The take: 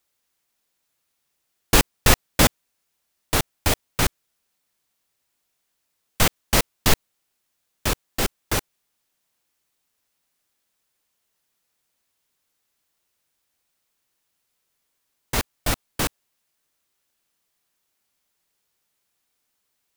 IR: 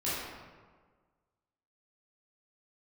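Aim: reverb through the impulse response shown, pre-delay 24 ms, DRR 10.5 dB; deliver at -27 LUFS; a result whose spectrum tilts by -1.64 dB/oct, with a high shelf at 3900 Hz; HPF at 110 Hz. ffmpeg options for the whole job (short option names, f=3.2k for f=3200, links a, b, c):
-filter_complex "[0:a]highpass=110,highshelf=f=3.9k:g=7.5,asplit=2[a][b];[1:a]atrim=start_sample=2205,adelay=24[c];[b][c]afir=irnorm=-1:irlink=0,volume=-18dB[d];[a][d]amix=inputs=2:normalize=0,volume=-8.5dB"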